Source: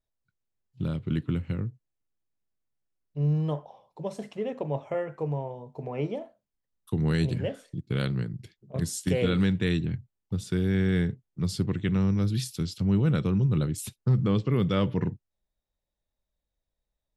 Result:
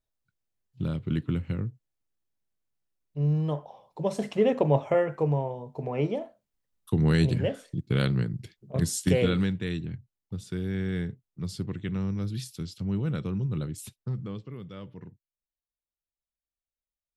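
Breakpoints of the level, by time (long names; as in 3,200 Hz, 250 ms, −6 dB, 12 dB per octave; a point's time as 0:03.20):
0:03.50 0 dB
0:04.46 +9.5 dB
0:05.58 +3 dB
0:09.15 +3 dB
0:09.60 −5.5 dB
0:13.88 −5.5 dB
0:14.62 −17 dB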